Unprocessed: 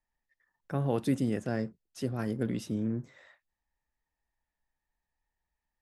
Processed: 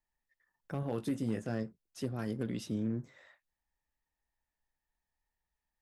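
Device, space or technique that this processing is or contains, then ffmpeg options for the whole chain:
limiter into clipper: -filter_complex "[0:a]asettb=1/sr,asplit=3[a][b][c];[a]atrim=end=0.814[d];[b]atrim=start=0.81:end=1.63,asetpts=PTS-STARTPTS,afade=t=in:d=0.004:c=qsin,afade=t=out:st=0.816:d=0.004:c=qsin,asplit=2[e][f];[f]adelay=18,volume=-7.5dB[g];[e][g]amix=inputs=2:normalize=0,atrim=end_sample=36162[h];[c]atrim=start=1.626[i];[d][h]acrossfade=d=0.004:c1=hsin:c2=qsin[j];[j][i]acrossfade=d=0.004:c1=qsin:c2=hsin,asettb=1/sr,asplit=3[k][l][m];[k]atrim=end=2.224[n];[l]atrim=start=2.22:end=3.01,asetpts=PTS-STARTPTS,afade=t=in:d=0.004:c=qsin,afade=t=out:st=0.786:d=0.004:c=qsin,equalizer=f=3.9k:w=1:g=4[o];[m]atrim=start=3.006[p];[n][o]acrossfade=d=0.004:c1=hsin:c2=qsin[q];[q][p]acrossfade=d=0.004:c1=qsin:c2=hsin,alimiter=limit=-21.5dB:level=0:latency=1:release=322,asoftclip=type=hard:threshold=-23.5dB,volume=-2.5dB"

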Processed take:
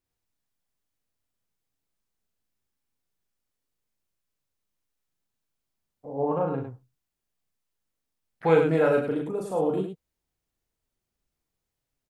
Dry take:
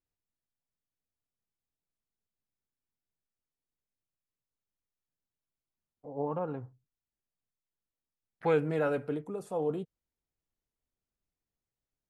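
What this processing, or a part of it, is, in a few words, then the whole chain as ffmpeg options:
slapback doubling: -filter_complex "[0:a]asplit=3[a][b][c];[b]adelay=37,volume=-3dB[d];[c]adelay=103,volume=-5.5dB[e];[a][d][e]amix=inputs=3:normalize=0,volume=5dB"

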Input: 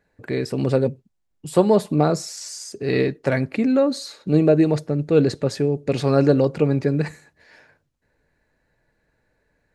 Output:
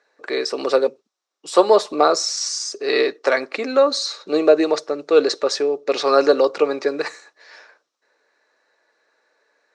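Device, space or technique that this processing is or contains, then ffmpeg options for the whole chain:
phone speaker on a table: -filter_complex "[0:a]highpass=f=390:w=0.5412,highpass=f=390:w=1.3066,equalizer=f=1.2k:t=q:w=4:g=9,equalizer=f=3.9k:t=q:w=4:g=6,equalizer=f=5.6k:t=q:w=4:g=9,lowpass=f=8.1k:w=0.5412,lowpass=f=8.1k:w=1.3066,asettb=1/sr,asplit=3[a][b][c];[a]atrim=end=5.634[d];[b]atrim=start=5.63:end=6.06,asetpts=PTS-STARTPTS,afade=t=in:d=0.004:c=qsin,afade=t=out:st=0.426:d=0.004:c=qsin,highshelf=f=9.5k:g=-11.5[e];[c]atrim=start=6.056[f];[d][e]acrossfade=d=0.004:c1=hsin:c2=qsin[g];[g][f]acrossfade=d=0.004:c1=qsin:c2=hsin,volume=4.5dB"

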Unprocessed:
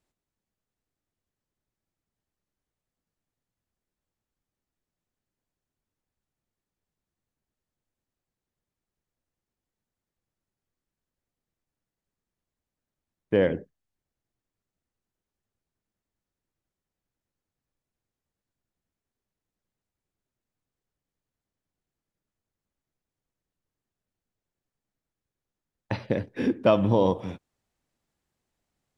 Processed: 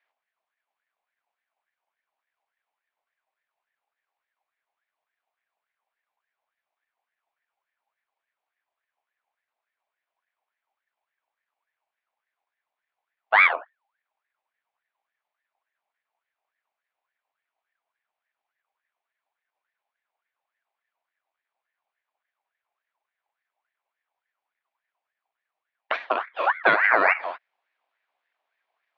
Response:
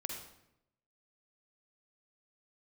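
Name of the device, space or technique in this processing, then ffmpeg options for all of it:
voice changer toy: -af "aeval=exprs='val(0)*sin(2*PI*1300*n/s+1300*0.4/3.5*sin(2*PI*3.5*n/s))':c=same,highpass=580,equalizer=f=670:t=q:w=4:g=6,equalizer=f=1.3k:t=q:w=4:g=-4,equalizer=f=2.3k:t=q:w=4:g=5,lowpass=f=3.7k:w=0.5412,lowpass=f=3.7k:w=1.3066,volume=6dB"

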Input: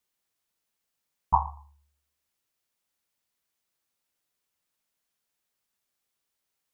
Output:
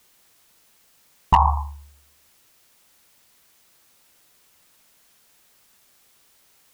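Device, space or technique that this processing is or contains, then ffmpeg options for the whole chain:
loud club master: -af "acompressor=threshold=-26dB:ratio=2,asoftclip=type=hard:threshold=-19.5dB,alimiter=level_in=29dB:limit=-1dB:release=50:level=0:latency=1,volume=-6dB"

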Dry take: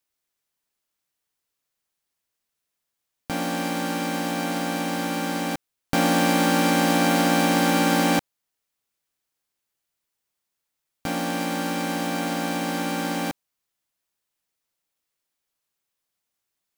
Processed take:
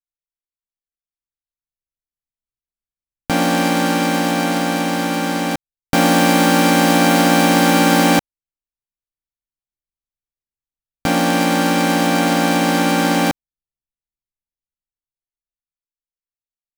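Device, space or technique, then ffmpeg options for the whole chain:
voice memo with heavy noise removal: -af "anlmdn=10,dynaudnorm=f=210:g=17:m=11.5dB"

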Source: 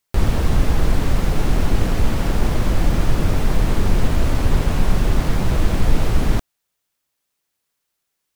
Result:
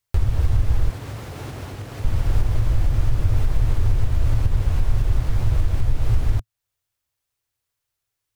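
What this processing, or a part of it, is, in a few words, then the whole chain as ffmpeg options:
car stereo with a boomy subwoofer: -filter_complex "[0:a]lowshelf=f=140:t=q:w=3:g=8,alimiter=limit=-4dB:level=0:latency=1:release=371,asettb=1/sr,asplit=3[a][b][c];[a]atrim=end=0.904[d];[b]atrim=start=0.9:end=2.05,asetpts=PTS-STARTPTS,afade=t=in:d=0.004:c=qsin,afade=t=out:st=1.146:d=0.004:c=qsin,highpass=170[e];[c]atrim=start=2.046[f];[d][e]acrossfade=d=0.004:c1=hsin:c2=qsin[g];[g][f]acrossfade=d=0.004:c1=qsin:c2=hsin,volume=-5dB"

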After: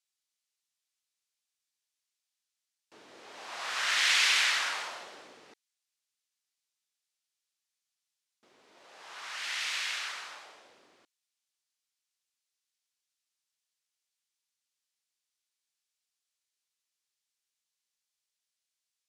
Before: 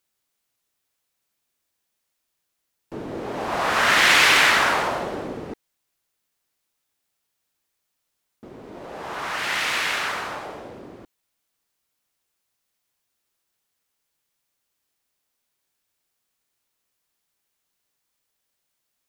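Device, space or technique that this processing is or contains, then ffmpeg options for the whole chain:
piezo pickup straight into a mixer: -af "lowpass=5.7k,aderivative"

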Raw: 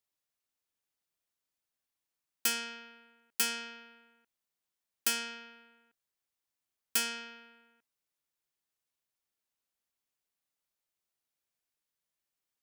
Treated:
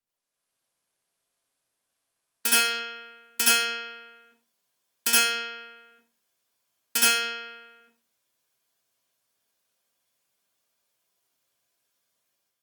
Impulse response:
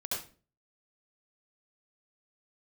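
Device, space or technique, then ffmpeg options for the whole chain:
far-field microphone of a smart speaker: -filter_complex "[1:a]atrim=start_sample=2205[a];[0:a][a]afir=irnorm=-1:irlink=0,highpass=f=130:p=1,dynaudnorm=f=150:g=5:m=11dB,volume=-1.5dB" -ar 48000 -c:a libopus -b:a 32k

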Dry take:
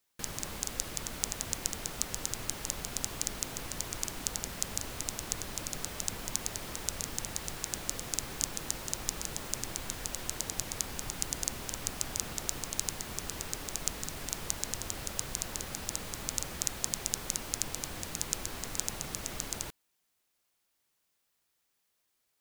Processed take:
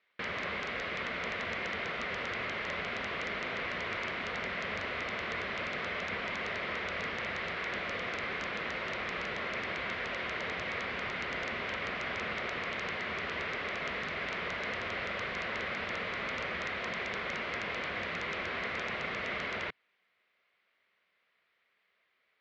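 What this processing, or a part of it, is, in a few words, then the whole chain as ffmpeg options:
overdrive pedal into a guitar cabinet: -filter_complex "[0:a]asplit=2[a][b];[b]highpass=f=720:p=1,volume=14dB,asoftclip=type=tanh:threshold=-4dB[c];[a][c]amix=inputs=2:normalize=0,lowpass=f=1.4k:p=1,volume=-6dB,highpass=81,equalizer=f=130:t=q:w=4:g=-9,equalizer=f=300:t=q:w=4:g=-9,equalizer=f=850:t=q:w=4:g=-10,equalizer=f=2.1k:t=q:w=4:g=8,lowpass=f=3.7k:w=0.5412,lowpass=f=3.7k:w=1.3066,volume=4.5dB"

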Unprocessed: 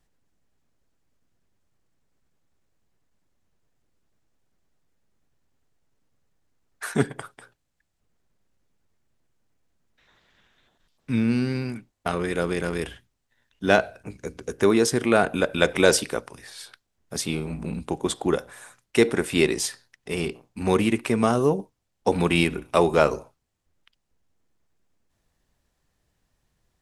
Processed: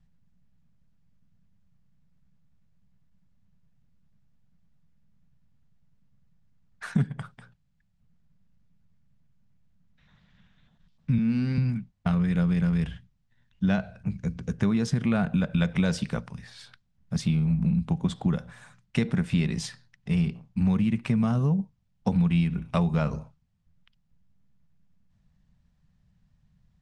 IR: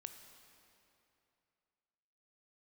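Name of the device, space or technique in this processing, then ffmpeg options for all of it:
jukebox: -filter_complex "[0:a]asettb=1/sr,asplit=3[a][b][c];[a]atrim=end=11.184[d];[b]atrim=start=11.18:end=11.58,asetpts=PTS-STARTPTS,afade=t=in:d=0.004:c=qsin,afade=t=out:st=0.396:d=0.004:c=qsin,highpass=200[e];[c]atrim=start=11.576[f];[d][e]acrossfade=d=0.004:c1=hsin:c2=qsin[g];[g][f]acrossfade=d=0.004:c1=qsin:c2=hsin,lowpass=5.4k,lowshelf=f=250:t=q:w=3:g=11,acompressor=threshold=-17dB:ratio=5,volume=-4dB"

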